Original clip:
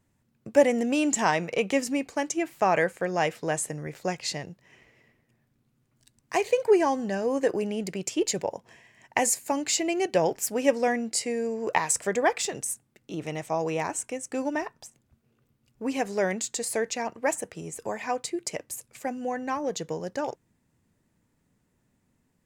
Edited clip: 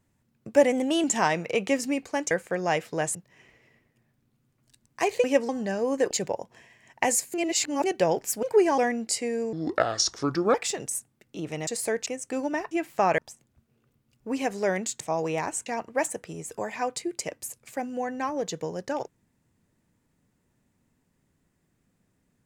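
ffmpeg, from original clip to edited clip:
-filter_complex "[0:a]asplit=20[a][b][c][d][e][f][g][h][i][j][k][l][m][n][o][p][q][r][s][t];[a]atrim=end=0.724[u];[b]atrim=start=0.72:end=1.07,asetpts=PTS-STARTPTS,asetrate=48510,aresample=44100[v];[c]atrim=start=1.066:end=2.342[w];[d]atrim=start=2.808:end=3.652[x];[e]atrim=start=4.478:end=6.572[y];[f]atrim=start=10.568:end=10.822[z];[g]atrim=start=6.918:end=7.542[aa];[h]atrim=start=8.248:end=9.482[ab];[i]atrim=start=9.478:end=9.982,asetpts=PTS-STARTPTS,areverse[ac];[j]atrim=start=9.978:end=10.572[ad];[k]atrim=start=6.568:end=6.922[ae];[l]atrim=start=10.818:end=11.574[af];[m]atrim=start=11.57:end=12.29,asetpts=PTS-STARTPTS,asetrate=31311,aresample=44100,atrim=end_sample=44721,asetpts=PTS-STARTPTS[ag];[n]atrim=start=12.286:end=13.422[ah];[o]atrim=start=16.548:end=16.942[ai];[p]atrim=start=14.078:end=14.732[aj];[q]atrim=start=2.338:end=2.812[ak];[r]atrim=start=14.728:end=16.552[al];[s]atrim=start=13.418:end=14.082[am];[t]atrim=start=16.938[an];[u][v]acrossfade=d=0.004:c1=hsin:c2=hsin[ao];[ao][w]acrossfade=d=0.004:c1=hsin:c2=hsin[ap];[ap][x]acrossfade=d=0.004:c1=hsin:c2=hsin[aq];[aq][y]acrossfade=d=0.004:c1=hsin:c2=hsin[ar];[ar][z]acrossfade=d=0.004:c1=hsin:c2=hsin[as];[as][aa]acrossfade=d=0.004:c1=hsin:c2=hsin[at];[at][ab]acrossfade=d=0.004:c1=hsin:c2=hsin[au];[au][ac]acrossfade=d=0.004:c1=hsin:c2=hsin[av];[av][ad]acrossfade=d=0.004:c1=hsin:c2=hsin[aw];[aw][ae]acrossfade=d=0.004:c1=hsin:c2=hsin[ax];[ax][af]acrossfade=d=0.004:c1=hsin:c2=hsin[ay];[ay][ag]acrossfade=d=0.004:c1=hsin:c2=hsin[az];[az][ah]acrossfade=d=0.004:c1=hsin:c2=hsin[ba];[ba][ai]acrossfade=d=0.004:c1=hsin:c2=hsin[bb];[bb][aj]acrossfade=d=0.004:c1=hsin:c2=hsin[bc];[bc][ak]acrossfade=d=0.004:c1=hsin:c2=hsin[bd];[bd][al]acrossfade=d=0.004:c1=hsin:c2=hsin[be];[be][am]acrossfade=d=0.004:c1=hsin:c2=hsin[bf];[bf][an]acrossfade=d=0.004:c1=hsin:c2=hsin"

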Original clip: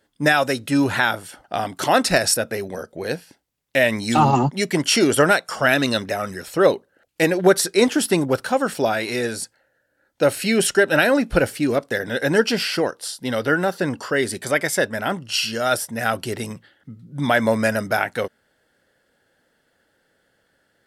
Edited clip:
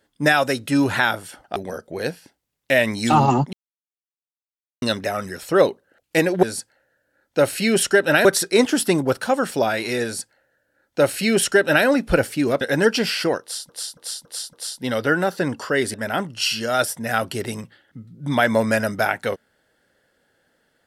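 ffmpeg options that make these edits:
-filter_complex "[0:a]asplit=12[a][b][c][d][e][f][g][h][i][j][k][l];[a]atrim=end=1.562[m];[b]atrim=start=2.608:end=4.58,asetpts=PTS-STARTPTS,afade=t=out:st=1.968:d=0.004:c=hsin[n];[c]atrim=start=4.58:end=5.87,asetpts=PTS-STARTPTS,volume=0[o];[d]atrim=start=5.87:end=7.482,asetpts=PTS-STARTPTS,afade=t=in:d=0.004:c=hsin[p];[e]atrim=start=9.268:end=11.092[q];[f]atrim=start=7.478:end=11.842[r];[g]atrim=start=12.138:end=13.222[s];[h]atrim=start=12.938:end=13.222[t];[i]atrim=start=12.938:end=13.222[u];[j]atrim=start=12.938:end=13.222[v];[k]atrim=start=12.938:end=14.352[w];[l]atrim=start=14.858[x];[n][o][p]concat=n=3:v=0:a=1[y];[m][y]acrossfade=d=0.004:c1=hsin:c2=hsin[z];[z][q]acrossfade=d=0.004:c1=hsin:c2=hsin[aa];[aa][r]acrossfade=d=0.004:c1=hsin:c2=hsin[ab];[ab][s]acrossfade=d=0.004:c1=hsin:c2=hsin[ac];[ac][t]acrossfade=d=0.004:c1=hsin:c2=hsin[ad];[ad][u]acrossfade=d=0.004:c1=hsin:c2=hsin[ae];[ae][v]acrossfade=d=0.004:c1=hsin:c2=hsin[af];[af][w]acrossfade=d=0.004:c1=hsin:c2=hsin[ag];[ag][x]acrossfade=d=0.004:c1=hsin:c2=hsin"

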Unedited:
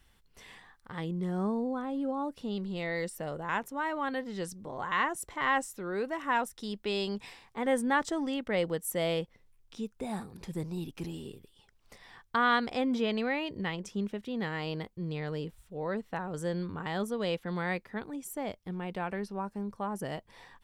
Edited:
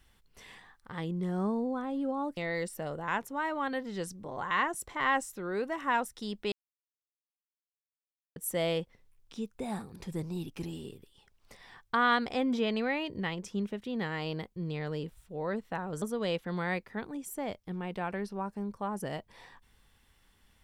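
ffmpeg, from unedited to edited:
-filter_complex "[0:a]asplit=5[a][b][c][d][e];[a]atrim=end=2.372[f];[b]atrim=start=2.778:end=6.93,asetpts=PTS-STARTPTS,afade=t=out:st=4.148:d=0.004:c=hsin[g];[c]atrim=start=6.93:end=8.77,asetpts=PTS-STARTPTS,volume=0[h];[d]atrim=start=8.77:end=16.432,asetpts=PTS-STARTPTS,afade=t=in:d=0.004:c=hsin[i];[e]atrim=start=17.008[j];[g][h][i]concat=n=3:v=0:a=1[k];[f][k]acrossfade=d=0.004:c1=hsin:c2=hsin[l];[l][j]acrossfade=d=0.004:c1=hsin:c2=hsin"

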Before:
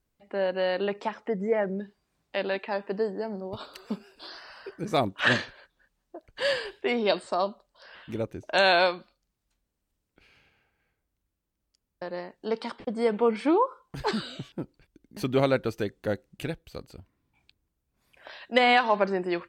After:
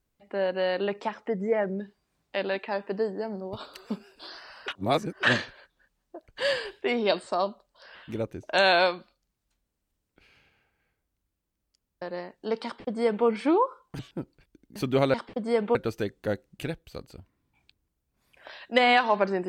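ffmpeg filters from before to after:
-filter_complex "[0:a]asplit=6[a][b][c][d][e][f];[a]atrim=end=4.682[g];[b]atrim=start=4.678:end=5.232,asetpts=PTS-STARTPTS,areverse[h];[c]atrim=start=5.228:end=13.992[i];[d]atrim=start=14.398:end=15.552[j];[e]atrim=start=12.648:end=13.262[k];[f]atrim=start=15.548[l];[g][h]acrossfade=d=0.004:c1=hsin:c2=hsin[m];[m][i]acrossfade=d=0.004:c1=hsin:c2=hsin[n];[n][j]acrossfade=d=0.004:c1=hsin:c2=hsin[o];[o][k]acrossfade=d=0.004:c1=hsin:c2=hsin[p];[p][l]acrossfade=d=0.004:c1=hsin:c2=hsin"

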